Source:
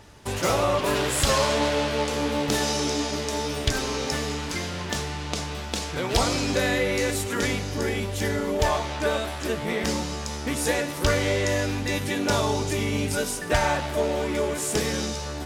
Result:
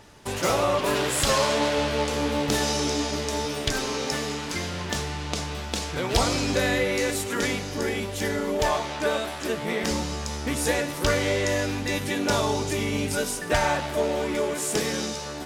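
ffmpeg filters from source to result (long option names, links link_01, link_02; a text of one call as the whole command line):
ffmpeg -i in.wav -af "asetnsamples=nb_out_samples=441:pad=0,asendcmd='1.78 equalizer g 1.5;3.45 equalizer g -9;4.55 equalizer g 0.5;6.84 equalizer g -9.5;9.91 equalizer g 1.5;10.94 equalizer g -5;14.35 equalizer g -11',equalizer=frequency=69:width_type=o:width=1.2:gain=-7" out.wav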